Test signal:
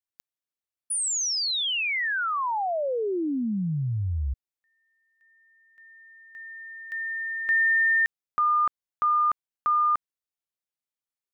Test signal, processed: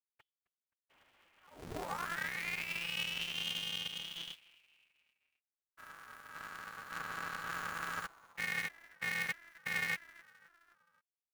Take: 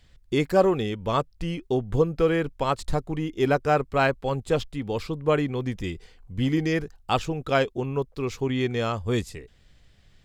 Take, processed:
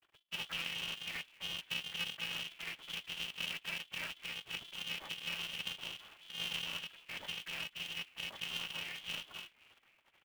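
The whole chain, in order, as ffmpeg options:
-filter_complex "[0:a]lowshelf=f=140:t=q:w=1.5:g=-9.5,asoftclip=type=tanh:threshold=0.0841,acrusher=bits=8:mix=0:aa=0.000001,lowpass=f=2700:t=q:w=0.5098,lowpass=f=2700:t=q:w=0.6013,lowpass=f=2700:t=q:w=0.9,lowpass=f=2700:t=q:w=2.563,afreqshift=-3200,acrusher=bits=4:mode=log:mix=0:aa=0.000001,acompressor=threshold=0.00891:ratio=2.5:attack=0.11:release=128:detection=peak,afftfilt=real='hypot(re,im)*cos(2*PI*random(0))':imag='hypot(re,im)*sin(2*PI*random(1))':win_size=512:overlap=0.75,aecho=1:1:4:0.84,asplit=2[s0][s1];[s1]asplit=4[s2][s3][s4][s5];[s2]adelay=262,afreqshift=-150,volume=0.0794[s6];[s3]adelay=524,afreqshift=-300,volume=0.0437[s7];[s4]adelay=786,afreqshift=-450,volume=0.024[s8];[s5]adelay=1048,afreqshift=-600,volume=0.0132[s9];[s6][s7][s8][s9]amix=inputs=4:normalize=0[s10];[s0][s10]amix=inputs=2:normalize=0,aeval=exprs='0.0355*(cos(1*acos(clip(val(0)/0.0355,-1,1)))-cos(1*PI/2))+0.00141*(cos(4*acos(clip(val(0)/0.0355,-1,1)))-cos(4*PI/2))+0.000794*(cos(8*acos(clip(val(0)/0.0355,-1,1)))-cos(8*PI/2))':c=same,aeval=exprs='val(0)*sgn(sin(2*PI*170*n/s))':c=same,volume=1.26"

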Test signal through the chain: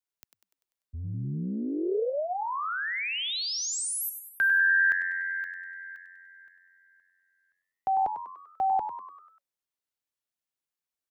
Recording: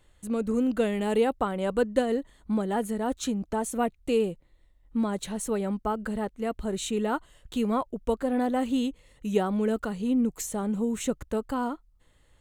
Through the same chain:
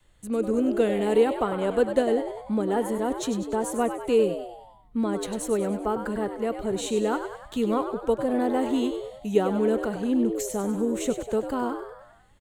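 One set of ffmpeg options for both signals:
-filter_complex "[0:a]asplit=7[s0][s1][s2][s3][s4][s5][s6];[s1]adelay=98,afreqshift=90,volume=0.355[s7];[s2]adelay=196,afreqshift=180,volume=0.188[s8];[s3]adelay=294,afreqshift=270,volume=0.1[s9];[s4]adelay=392,afreqshift=360,volume=0.0531[s10];[s5]adelay=490,afreqshift=450,volume=0.0279[s11];[s6]adelay=588,afreqshift=540,volume=0.0148[s12];[s0][s7][s8][s9][s10][s11][s12]amix=inputs=7:normalize=0,adynamicequalizer=threshold=0.01:dfrequency=420:dqfactor=2.5:tfrequency=420:tqfactor=2.5:attack=5:release=100:ratio=0.375:range=2.5:mode=boostabove:tftype=bell,acrossover=split=120|1400[s13][s14][s15];[s13]asoftclip=type=tanh:threshold=0.0158[s16];[s16][s14][s15]amix=inputs=3:normalize=0"

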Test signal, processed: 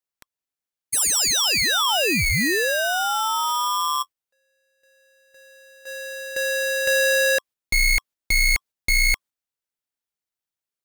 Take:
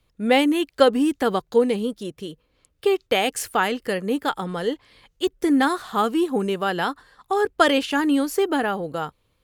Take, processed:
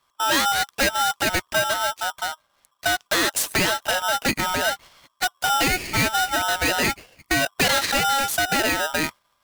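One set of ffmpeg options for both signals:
-filter_complex "[0:a]highpass=f=48:w=0.5412,highpass=f=48:w=1.3066,agate=range=0.501:threshold=0.00794:ratio=16:detection=peak,acrossover=split=830[s0][s1];[s0]acompressor=threshold=0.0398:ratio=4[s2];[s2][s1]amix=inputs=2:normalize=0,asoftclip=type=hard:threshold=0.0708,aeval=exprs='val(0)*sgn(sin(2*PI*1100*n/s))':c=same,volume=2.11"

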